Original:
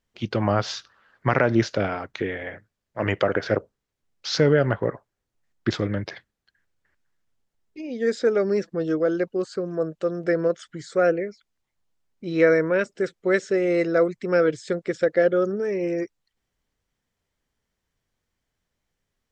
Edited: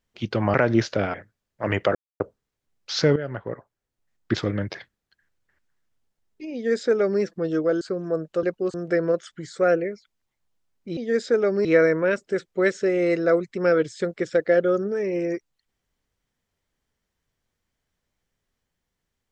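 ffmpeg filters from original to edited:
-filter_complex "[0:a]asplit=11[s0][s1][s2][s3][s4][s5][s6][s7][s8][s9][s10];[s0]atrim=end=0.542[s11];[s1]atrim=start=1.348:end=1.952[s12];[s2]atrim=start=2.498:end=3.31,asetpts=PTS-STARTPTS,afade=t=out:st=0.808:d=0.004:c=hsin[s13];[s3]atrim=start=3.31:end=3.56,asetpts=PTS-STARTPTS,volume=0[s14];[s4]atrim=start=3.56:end=4.52,asetpts=PTS-STARTPTS,afade=t=in:d=0.004:c=hsin,afade=t=out:st=0.956:d=0.004:c=hsin:silence=0.223872[s15];[s5]atrim=start=4.52:end=9.172,asetpts=PTS-STARTPTS,afade=t=in:d=1.17:silence=0.223872[s16];[s6]atrim=start=9.478:end=10.102[s17];[s7]atrim=start=9.168:end=9.482[s18];[s8]atrim=start=10.098:end=12.332[s19];[s9]atrim=start=7.898:end=8.582[s20];[s10]atrim=start=12.328[s21];[s11][s12]acrossfade=d=0.004:c1=hsin:c2=hsin[s22];[s13][s14][s15][s16]concat=n=4:v=0:a=1[s23];[s22][s23]acrossfade=d=0.004:c1=hsin:c2=hsin[s24];[s24][s17]acrossfade=d=0.004:c1=hsin:c2=hsin[s25];[s25][s18]acrossfade=d=0.004:c1=hsin:c2=hsin[s26];[s26][s19]acrossfade=d=0.004:c1=hsin:c2=hsin[s27];[s27][s20]acrossfade=d=0.004:c1=hsin:c2=hsin[s28];[s28][s21]acrossfade=d=0.004:c1=hsin:c2=hsin"

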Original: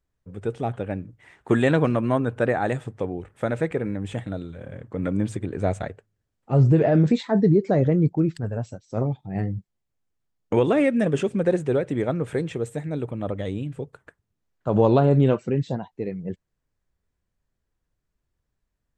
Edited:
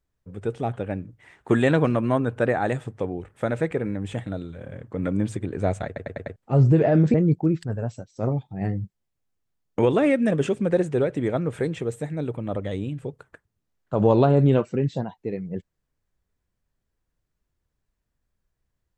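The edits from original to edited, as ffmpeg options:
-filter_complex "[0:a]asplit=7[s0][s1][s2][s3][s4][s5][s6];[s0]atrim=end=5.962[s7];[s1]atrim=start=5.858:end=5.962[s8];[s2]atrim=start=5.858:end=5.962[s9];[s3]atrim=start=5.858:end=5.962[s10];[s4]atrim=start=5.858:end=5.962[s11];[s5]atrim=start=6.358:end=7.142[s12];[s6]atrim=start=7.878[s13];[s7][s8]acrossfade=d=0.004:c1=hsin:c2=hsin[s14];[s14][s9]acrossfade=d=0.004:c1=hsin:c2=hsin[s15];[s15][s10]acrossfade=d=0.004:c1=hsin:c2=hsin[s16];[s16][s11]acrossfade=d=0.004:c1=hsin:c2=hsin[s17];[s17][s12]acrossfade=d=0.004:c1=hsin:c2=hsin[s18];[s18][s13]acrossfade=d=0.004:c1=hsin:c2=hsin"

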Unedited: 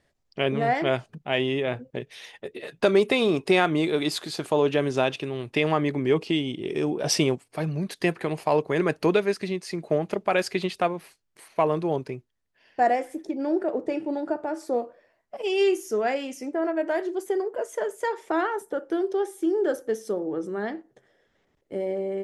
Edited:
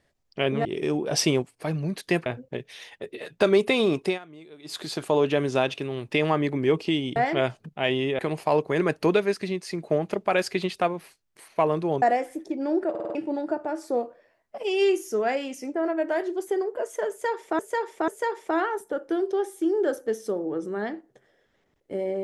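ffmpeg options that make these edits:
-filter_complex "[0:a]asplit=15[s0][s1][s2][s3][s4][s5][s6][s7][s8][s9][s10][s11][s12][s13][s14];[s0]atrim=end=0.652[s15];[s1]atrim=start=6.578:end=8.192[s16];[s2]atrim=start=1.678:end=3.61,asetpts=PTS-STARTPTS,afade=t=out:st=1.762:d=0.17:silence=0.0749894[s17];[s3]atrim=start=3.61:end=4.06,asetpts=PTS-STARTPTS,volume=0.075[s18];[s4]atrim=start=4.06:end=6.582,asetpts=PTS-STARTPTS,afade=t=in:d=0.17:silence=0.0749894[s19];[s5]atrim=start=0.648:end=1.682[s20];[s6]atrim=start=8.188:end=12.022[s21];[s7]atrim=start=12.808:end=13.742[s22];[s8]atrim=start=13.688:end=13.742[s23];[s9]atrim=start=13.688:end=13.742[s24];[s10]atrim=start=13.688:end=13.742[s25];[s11]atrim=start=13.688:end=13.742[s26];[s12]atrim=start=13.938:end=18.382[s27];[s13]atrim=start=17.888:end=18.382[s28];[s14]atrim=start=17.888[s29];[s15][s16]acrossfade=d=0.004:c1=hsin:c2=hsin[s30];[s17][s18][s19]concat=n=3:v=0:a=1[s31];[s30][s31]acrossfade=d=0.004:c1=hsin:c2=hsin[s32];[s32][s20]acrossfade=d=0.004:c1=hsin:c2=hsin[s33];[s33][s21]acrossfade=d=0.004:c1=hsin:c2=hsin[s34];[s34][s22]acrossfade=d=0.004:c1=hsin:c2=hsin[s35];[s35][s23]acrossfade=d=0.004:c1=hsin:c2=hsin[s36];[s36][s24]acrossfade=d=0.004:c1=hsin:c2=hsin[s37];[s37][s25]acrossfade=d=0.004:c1=hsin:c2=hsin[s38];[s38][s26]acrossfade=d=0.004:c1=hsin:c2=hsin[s39];[s39][s27]acrossfade=d=0.004:c1=hsin:c2=hsin[s40];[s40][s28]acrossfade=d=0.004:c1=hsin:c2=hsin[s41];[s41][s29]acrossfade=d=0.004:c1=hsin:c2=hsin"

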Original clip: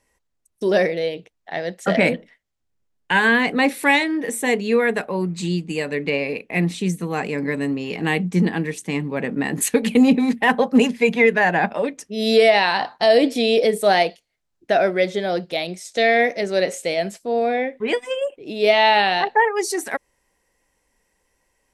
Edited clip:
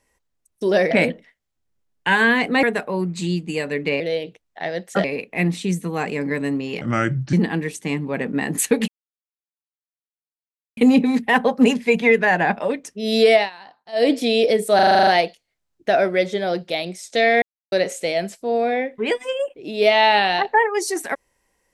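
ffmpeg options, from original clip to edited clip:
-filter_complex "[0:a]asplit=20[s0][s1][s2][s3][s4][s5][s6][s7][s8][s9][s10][s11][s12][s13][s14][s15][s16][s17][s18][s19];[s0]atrim=end=0.912[s20];[s1]atrim=start=1.948:end=3.672[s21];[s2]atrim=start=4.838:end=6.212[s22];[s3]atrim=start=0.908:end=1.952[s23];[s4]atrim=start=6.208:end=7.984[s24];[s5]atrim=start=7.98:end=8.36,asetpts=PTS-STARTPTS,asetrate=32193,aresample=44100,atrim=end_sample=22956,asetpts=PTS-STARTPTS[s25];[s6]atrim=start=8.356:end=9.91,asetpts=PTS-STARTPTS,afade=t=out:st=1.55:d=0.004:c=hsin,apad=pad_dur=1.89[s26];[s7]atrim=start=9.91:end=12.64,asetpts=PTS-STARTPTS,afade=t=in:d=0.004:c=hsin,afade=t=out:st=2.59:d=0.14:silence=0.0841395[s27];[s8]atrim=start=12.64:end=13.06,asetpts=PTS-STARTPTS,volume=0.0841[s28];[s9]atrim=start=13.06:end=13.932,asetpts=PTS-STARTPTS,afade=t=in:d=0.14:silence=0.0841395[s29];[s10]atrim=start=13.888:end=13.932[s30];[s11]atrim=start=13.888:end=13.932[s31];[s12]atrim=start=13.888:end=13.932[s32];[s13]atrim=start=13.888:end=13.932[s33];[s14]atrim=start=13.888:end=13.932[s34];[s15]atrim=start=13.888:end=13.932[s35];[s16]atrim=start=13.888:end=13.932[s36];[s17]atrim=start=13.888:end=16.24,asetpts=PTS-STARTPTS,afade=t=out:st=2.348:d=0.004:c=hsin[s37];[s18]atrim=start=16.24:end=16.54,asetpts=PTS-STARTPTS,volume=0[s38];[s19]atrim=start=16.54,asetpts=PTS-STARTPTS,afade=t=in:d=0.004:c=hsin[s39];[s20][s21]acrossfade=d=0.004:c1=hsin:c2=hsin[s40];[s40][s22]acrossfade=d=0.004:c1=hsin:c2=hsin[s41];[s41][s23]acrossfade=d=0.004:c1=hsin:c2=hsin[s42];[s42][s24]acrossfade=d=0.004:c1=hsin:c2=hsin[s43];[s43][s25]acrossfade=d=0.004:c1=hsin:c2=hsin[s44];[s26][s27][s28][s29]concat=n=4:v=0:a=1[s45];[s44][s45]acrossfade=d=0.004:c1=hsin:c2=hsin[s46];[s46][s30]acrossfade=d=0.004:c1=hsin:c2=hsin[s47];[s47][s31]acrossfade=d=0.004:c1=hsin:c2=hsin[s48];[s48][s32]acrossfade=d=0.004:c1=hsin:c2=hsin[s49];[s49][s33]acrossfade=d=0.004:c1=hsin:c2=hsin[s50];[s50][s34]acrossfade=d=0.004:c1=hsin:c2=hsin[s51];[s51][s35]acrossfade=d=0.004:c1=hsin:c2=hsin[s52];[s52][s36]acrossfade=d=0.004:c1=hsin:c2=hsin[s53];[s37][s38][s39]concat=n=3:v=0:a=1[s54];[s53][s54]acrossfade=d=0.004:c1=hsin:c2=hsin"

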